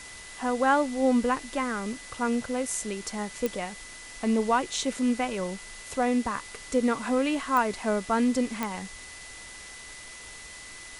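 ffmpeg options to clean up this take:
-af "adeclick=t=4,bandreject=f=2k:w=30,afwtdn=0.0071"

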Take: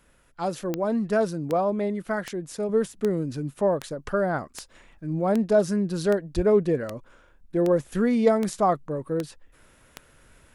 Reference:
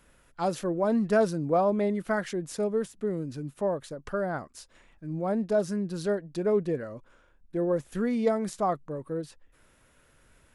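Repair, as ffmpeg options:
-filter_complex "[0:a]adeclick=t=4,asplit=3[a][b][c];[a]afade=t=out:st=6.35:d=0.02[d];[b]highpass=f=140:w=0.5412,highpass=f=140:w=1.3066,afade=t=in:st=6.35:d=0.02,afade=t=out:st=6.47:d=0.02[e];[c]afade=t=in:st=6.47:d=0.02[f];[d][e][f]amix=inputs=3:normalize=0,asetnsamples=n=441:p=0,asendcmd='2.69 volume volume -5.5dB',volume=0dB"

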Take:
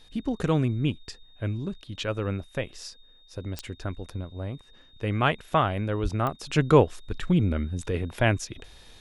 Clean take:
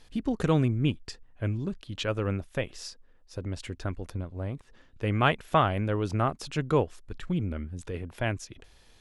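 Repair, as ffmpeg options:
-filter_complex "[0:a]adeclick=t=4,bandreject=f=3.7k:w=30,asplit=3[a][b][c];[a]afade=t=out:st=6.02:d=0.02[d];[b]highpass=f=140:w=0.5412,highpass=f=140:w=1.3066,afade=t=in:st=6.02:d=0.02,afade=t=out:st=6.14:d=0.02[e];[c]afade=t=in:st=6.14:d=0.02[f];[d][e][f]amix=inputs=3:normalize=0,asetnsamples=n=441:p=0,asendcmd='6.5 volume volume -7dB',volume=0dB"

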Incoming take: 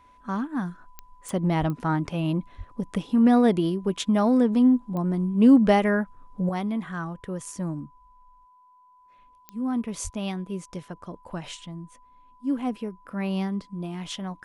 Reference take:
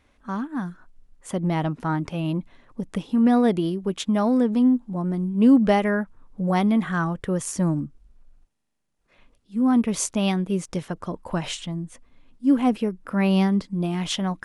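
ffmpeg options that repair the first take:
-filter_complex "[0:a]adeclick=t=4,bandreject=f=1k:w=30,asplit=3[a][b][c];[a]afade=t=out:st=1.59:d=0.02[d];[b]highpass=f=140:w=0.5412,highpass=f=140:w=1.3066,afade=t=in:st=1.59:d=0.02,afade=t=out:st=1.71:d=0.02[e];[c]afade=t=in:st=1.71:d=0.02[f];[d][e][f]amix=inputs=3:normalize=0,asplit=3[g][h][i];[g]afade=t=out:st=2.57:d=0.02[j];[h]highpass=f=140:w=0.5412,highpass=f=140:w=1.3066,afade=t=in:st=2.57:d=0.02,afade=t=out:st=2.69:d=0.02[k];[i]afade=t=in:st=2.69:d=0.02[l];[j][k][l]amix=inputs=3:normalize=0,asplit=3[m][n][o];[m]afade=t=out:st=10.03:d=0.02[p];[n]highpass=f=140:w=0.5412,highpass=f=140:w=1.3066,afade=t=in:st=10.03:d=0.02,afade=t=out:st=10.15:d=0.02[q];[o]afade=t=in:st=10.15:d=0.02[r];[p][q][r]amix=inputs=3:normalize=0,asetnsamples=n=441:p=0,asendcmd='6.49 volume volume 8dB',volume=0dB"

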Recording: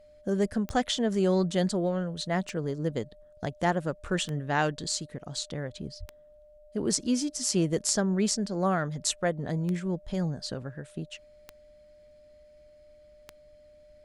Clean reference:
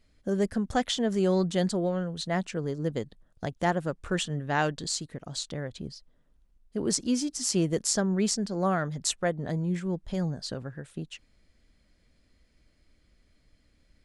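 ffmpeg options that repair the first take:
-filter_complex "[0:a]adeclick=t=4,bandreject=f=600:w=30,asplit=3[a][b][c];[a]afade=t=out:st=5.99:d=0.02[d];[b]highpass=f=140:w=0.5412,highpass=f=140:w=1.3066,afade=t=in:st=5.99:d=0.02,afade=t=out:st=6.11:d=0.02[e];[c]afade=t=in:st=6.11:d=0.02[f];[d][e][f]amix=inputs=3:normalize=0"

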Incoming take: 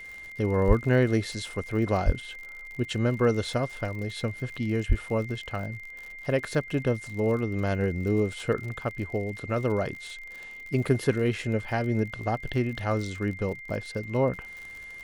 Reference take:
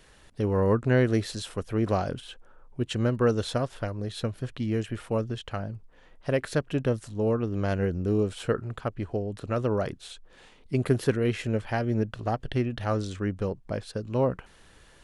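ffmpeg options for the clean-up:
-filter_complex "[0:a]adeclick=t=4,bandreject=f=2.1k:w=30,asplit=3[a][b][c];[a]afade=t=out:st=0.67:d=0.02[d];[b]highpass=f=140:w=0.5412,highpass=f=140:w=1.3066,afade=t=in:st=0.67:d=0.02,afade=t=out:st=0.79:d=0.02[e];[c]afade=t=in:st=0.79:d=0.02[f];[d][e][f]amix=inputs=3:normalize=0,asplit=3[g][h][i];[g]afade=t=out:st=2.05:d=0.02[j];[h]highpass=f=140:w=0.5412,highpass=f=140:w=1.3066,afade=t=in:st=2.05:d=0.02,afade=t=out:st=2.17:d=0.02[k];[i]afade=t=in:st=2.17:d=0.02[l];[j][k][l]amix=inputs=3:normalize=0,asplit=3[m][n][o];[m]afade=t=out:st=4.88:d=0.02[p];[n]highpass=f=140:w=0.5412,highpass=f=140:w=1.3066,afade=t=in:st=4.88:d=0.02,afade=t=out:st=5:d=0.02[q];[o]afade=t=in:st=5:d=0.02[r];[p][q][r]amix=inputs=3:normalize=0"

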